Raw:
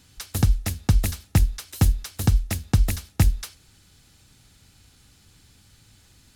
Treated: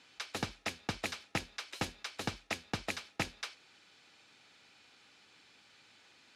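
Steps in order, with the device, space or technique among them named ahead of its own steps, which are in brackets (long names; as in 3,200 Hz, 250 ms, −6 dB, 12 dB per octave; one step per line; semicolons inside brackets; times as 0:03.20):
intercom (band-pass filter 440–3,900 Hz; parametric band 2,400 Hz +5 dB 0.21 octaves; soft clipping −23.5 dBFS, distortion −10 dB)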